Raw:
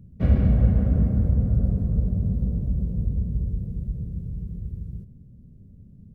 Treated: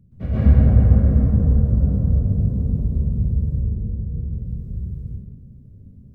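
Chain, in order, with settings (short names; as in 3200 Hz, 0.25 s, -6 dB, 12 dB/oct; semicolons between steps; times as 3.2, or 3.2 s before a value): 3.47–4.33 high shelf 2000 Hz -11.5 dB; plate-style reverb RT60 1 s, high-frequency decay 0.45×, pre-delay 0.11 s, DRR -10 dB; gain -6.5 dB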